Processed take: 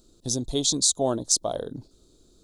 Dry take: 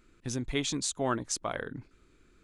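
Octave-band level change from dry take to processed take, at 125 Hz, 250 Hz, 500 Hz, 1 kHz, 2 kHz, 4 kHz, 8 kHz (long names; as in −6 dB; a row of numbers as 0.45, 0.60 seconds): +3.5, +4.5, +7.0, +1.5, −14.0, +10.0, +12.0 decibels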